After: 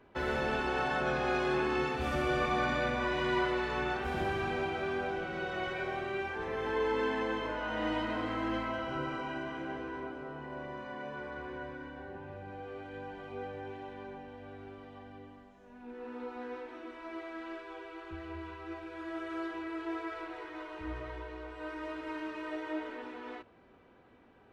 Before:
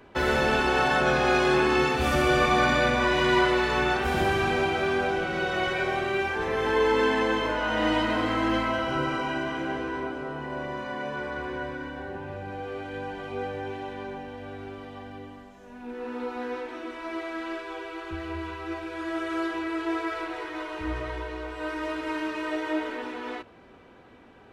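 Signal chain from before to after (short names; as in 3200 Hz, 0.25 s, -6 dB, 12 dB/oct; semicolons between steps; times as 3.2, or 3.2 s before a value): high shelf 4600 Hz -8.5 dB; gain -8.5 dB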